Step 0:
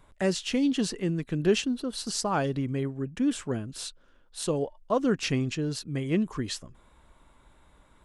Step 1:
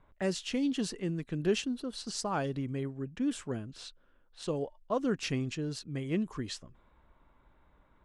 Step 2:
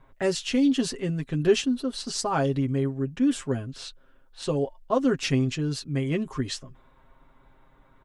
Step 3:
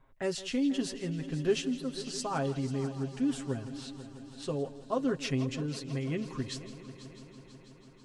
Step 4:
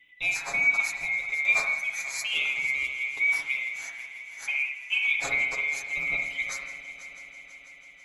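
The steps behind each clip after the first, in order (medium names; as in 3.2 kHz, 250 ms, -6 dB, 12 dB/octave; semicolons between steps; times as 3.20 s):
level-controlled noise filter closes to 2.2 kHz, open at -25.5 dBFS; trim -5.5 dB
comb 7.5 ms, depth 66%; trim +5.5 dB
multi-head delay 164 ms, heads first and third, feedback 70%, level -16 dB; trim -7.5 dB
split-band scrambler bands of 2 kHz; reverberation RT60 0.75 s, pre-delay 47 ms, DRR 3 dB; trim +3 dB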